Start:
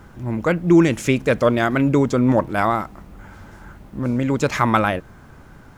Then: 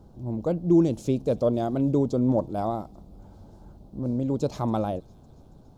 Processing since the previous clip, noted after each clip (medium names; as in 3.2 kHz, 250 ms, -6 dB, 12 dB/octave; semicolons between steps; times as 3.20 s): FFT filter 730 Hz 0 dB, 1.9 kHz -27 dB, 4.1 kHz -4 dB, 7.5 kHz -9 dB; feedback echo behind a high-pass 279 ms, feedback 65%, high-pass 4.5 kHz, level -19 dB; trim -6 dB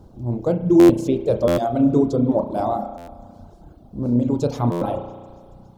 spring tank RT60 2 s, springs 33 ms, chirp 50 ms, DRR 0.5 dB; reverb removal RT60 1.1 s; buffer glitch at 0.79/1.47/2.97/4.71 s, samples 512; trim +5 dB